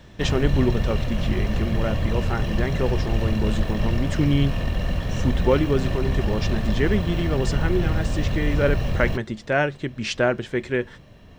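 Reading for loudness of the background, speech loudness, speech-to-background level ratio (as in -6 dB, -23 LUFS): -26.0 LUFS, -25.5 LUFS, 0.5 dB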